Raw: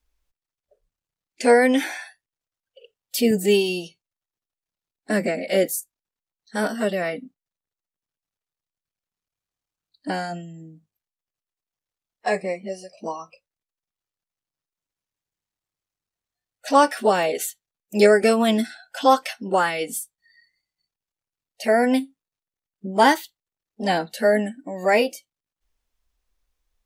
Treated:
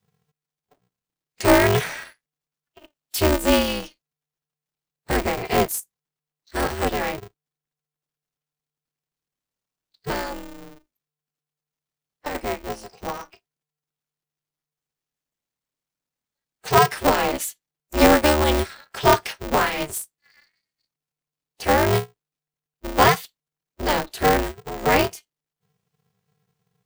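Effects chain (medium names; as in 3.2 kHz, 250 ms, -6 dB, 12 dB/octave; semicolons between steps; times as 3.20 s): 10.27–12.35 s: compression 10:1, threshold -27 dBFS, peak gain reduction 10.5 dB; polarity switched at an audio rate 150 Hz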